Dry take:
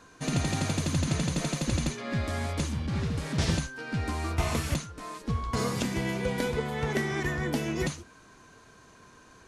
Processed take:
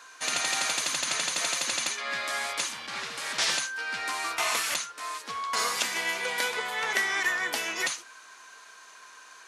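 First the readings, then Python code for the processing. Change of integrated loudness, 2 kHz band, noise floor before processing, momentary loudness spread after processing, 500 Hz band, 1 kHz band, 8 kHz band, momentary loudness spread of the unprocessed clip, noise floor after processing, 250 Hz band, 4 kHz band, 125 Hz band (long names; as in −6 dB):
+2.5 dB, +8.0 dB, −55 dBFS, 9 LU, −5.5 dB, +4.5 dB, +8.5 dB, 5 LU, −51 dBFS, −17.0 dB, +8.5 dB, −28.0 dB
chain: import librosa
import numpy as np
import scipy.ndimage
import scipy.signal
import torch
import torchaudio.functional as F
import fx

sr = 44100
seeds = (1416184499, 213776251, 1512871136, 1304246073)

y = scipy.signal.sosfilt(scipy.signal.butter(2, 1100.0, 'highpass', fs=sr, output='sos'), x)
y = y * 10.0 ** (8.5 / 20.0)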